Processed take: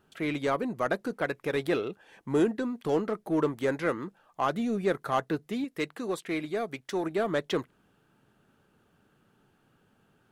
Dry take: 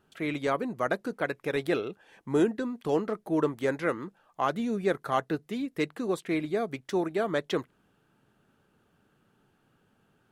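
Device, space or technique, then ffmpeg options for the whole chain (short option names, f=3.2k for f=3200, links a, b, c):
parallel distortion: -filter_complex "[0:a]asettb=1/sr,asplit=3[a][b][c];[a]atrim=end=5.644[d];[b]atrim=start=5.64:end=7.04,asetpts=PTS-STARTPTS,afade=t=in:d=0.004:c=qsin,afade=t=out:st=1.396:d=0.004:c=qsin,lowshelf=f=460:g=-6[e];[c]atrim=start=7.036[f];[d][e]acrossfade=d=0.004:c1=hsin:c2=qsin[g];[g][f]acrossfade=d=0.004:c1=qsin:c2=hsin,asplit=2[h][i];[i]asoftclip=type=hard:threshold=-30dB,volume=-8dB[j];[h][j]amix=inputs=2:normalize=0,volume=-1.5dB"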